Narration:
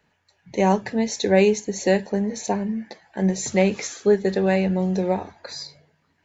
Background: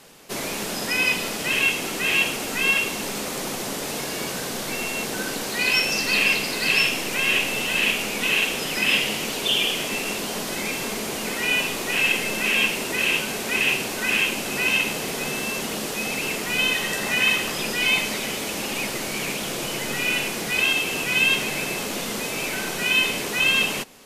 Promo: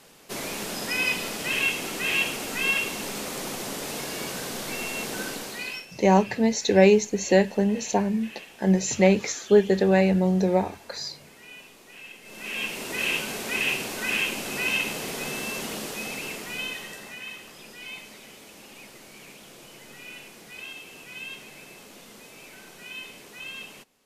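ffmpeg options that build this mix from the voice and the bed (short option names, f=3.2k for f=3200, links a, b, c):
-filter_complex "[0:a]adelay=5450,volume=0.5dB[a];[1:a]volume=15dB,afade=t=out:st=5.23:d=0.63:silence=0.105925,afade=t=in:st=12.22:d=0.84:silence=0.112202,afade=t=out:st=15.67:d=1.53:silence=0.188365[b];[a][b]amix=inputs=2:normalize=0"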